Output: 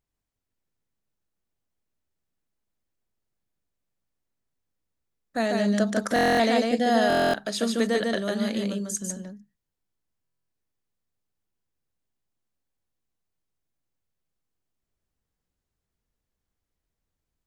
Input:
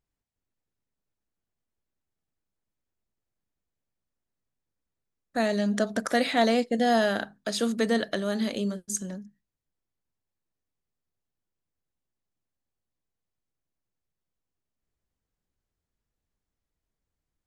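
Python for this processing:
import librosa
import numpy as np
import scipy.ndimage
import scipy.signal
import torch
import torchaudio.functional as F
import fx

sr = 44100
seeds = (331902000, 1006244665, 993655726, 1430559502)

p1 = x + fx.echo_single(x, sr, ms=147, db=-3.0, dry=0)
y = fx.buffer_glitch(p1, sr, at_s=(6.14, 7.08, 10.23), block=1024, repeats=10)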